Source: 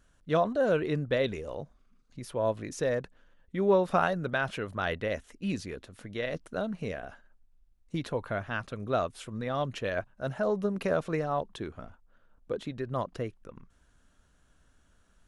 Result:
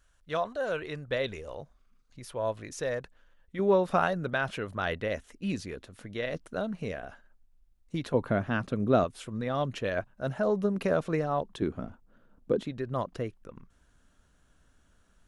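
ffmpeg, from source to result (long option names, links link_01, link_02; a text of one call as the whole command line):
ffmpeg -i in.wav -af "asetnsamples=nb_out_samples=441:pad=0,asendcmd='1.08 equalizer g -6.5;3.59 equalizer g 0;8.14 equalizer g 11;9.04 equalizer g 2.5;11.62 equalizer g 11.5;12.63 equalizer g 1',equalizer=frequency=230:width_type=o:width=2.2:gain=-12.5" out.wav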